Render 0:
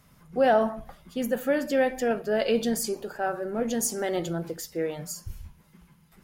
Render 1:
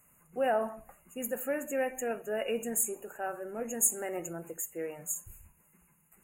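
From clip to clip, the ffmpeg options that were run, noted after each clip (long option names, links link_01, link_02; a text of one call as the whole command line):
ffmpeg -i in.wav -af "afftfilt=real='re*(1-between(b*sr/4096,2900,6500))':imag='im*(1-between(b*sr/4096,2900,6500))':win_size=4096:overlap=0.75,bass=frequency=250:gain=-7,treble=frequency=4000:gain=11,volume=-7.5dB" out.wav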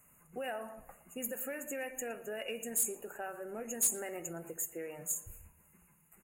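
ffmpeg -i in.wav -filter_complex "[0:a]acrossover=split=1900[link_01][link_02];[link_01]acompressor=threshold=-39dB:ratio=6[link_03];[link_03][link_02]amix=inputs=2:normalize=0,asoftclip=type=tanh:threshold=-22dB,asplit=2[link_04][link_05];[link_05]adelay=115,lowpass=frequency=2700:poles=1,volume=-17dB,asplit=2[link_06][link_07];[link_07]adelay=115,lowpass=frequency=2700:poles=1,volume=0.55,asplit=2[link_08][link_09];[link_09]adelay=115,lowpass=frequency=2700:poles=1,volume=0.55,asplit=2[link_10][link_11];[link_11]adelay=115,lowpass=frequency=2700:poles=1,volume=0.55,asplit=2[link_12][link_13];[link_13]adelay=115,lowpass=frequency=2700:poles=1,volume=0.55[link_14];[link_04][link_06][link_08][link_10][link_12][link_14]amix=inputs=6:normalize=0" out.wav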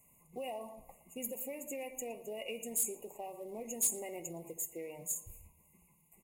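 ffmpeg -i in.wav -af "acrusher=bits=8:mode=log:mix=0:aa=0.000001,asuperstop=centerf=1500:order=12:qfactor=1.7,volume=-1.5dB" out.wav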